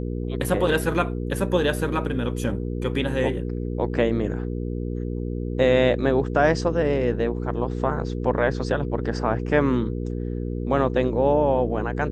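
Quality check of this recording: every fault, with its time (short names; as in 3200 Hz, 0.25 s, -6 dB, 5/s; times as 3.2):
hum 60 Hz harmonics 8 -28 dBFS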